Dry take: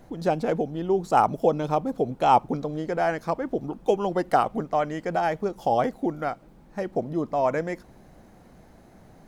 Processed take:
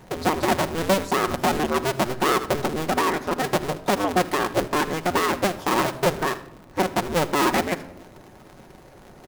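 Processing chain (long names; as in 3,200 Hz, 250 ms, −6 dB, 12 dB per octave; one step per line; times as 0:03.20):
sub-harmonics by changed cycles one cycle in 2, inverted
low-shelf EQ 130 Hz −5 dB
on a send: single-tap delay 79 ms −20 dB
on the sum: harmonic and percussive parts rebalanced percussive +4 dB
brickwall limiter −16.5 dBFS, peak gain reduction 11.5 dB
rectangular room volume 4,000 cubic metres, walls furnished, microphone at 1 metre
expander for the loud parts 1.5 to 1, over −25 dBFS
level +5 dB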